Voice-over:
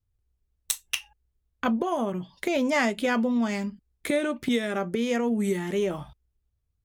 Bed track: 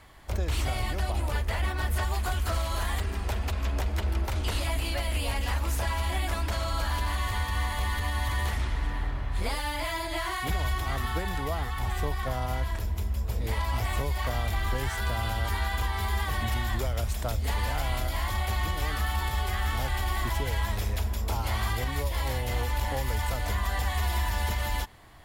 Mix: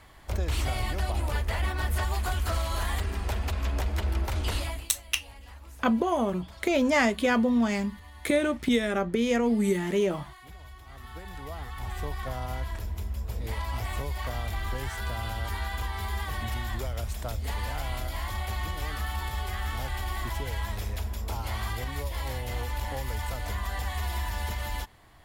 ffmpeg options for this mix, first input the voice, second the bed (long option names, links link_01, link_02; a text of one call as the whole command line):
ffmpeg -i stem1.wav -i stem2.wav -filter_complex "[0:a]adelay=4200,volume=1dB[link_01];[1:a]volume=15dB,afade=type=out:start_time=4.54:duration=0.35:silence=0.11885,afade=type=in:start_time=10.86:duration=1.32:silence=0.177828[link_02];[link_01][link_02]amix=inputs=2:normalize=0" out.wav